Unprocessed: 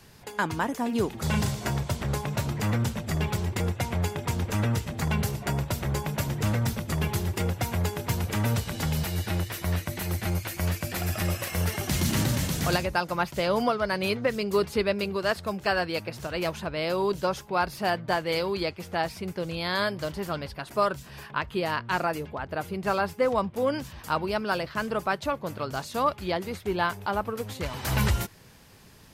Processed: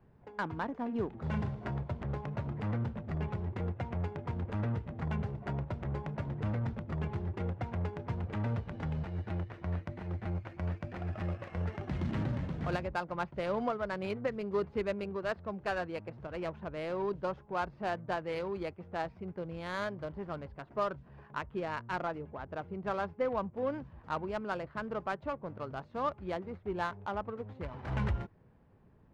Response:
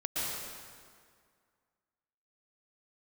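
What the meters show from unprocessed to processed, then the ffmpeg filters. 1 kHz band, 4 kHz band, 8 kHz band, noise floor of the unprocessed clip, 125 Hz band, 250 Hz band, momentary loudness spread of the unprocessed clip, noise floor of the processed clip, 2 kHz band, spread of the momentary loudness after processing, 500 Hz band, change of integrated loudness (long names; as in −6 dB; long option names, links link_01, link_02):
−8.5 dB, −18.0 dB, below −25 dB, −48 dBFS, −7.5 dB, −8.0 dB, 6 LU, −60 dBFS, −11.0 dB, 6 LU, −8.0 dB, −8.5 dB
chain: -af "adynamicsmooth=sensitivity=2:basefreq=1100,lowpass=frequency=2800:poles=1,volume=-7.5dB"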